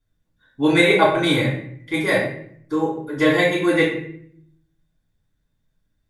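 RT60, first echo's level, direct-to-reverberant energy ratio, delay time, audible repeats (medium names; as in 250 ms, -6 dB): 0.65 s, no echo, -7.0 dB, no echo, no echo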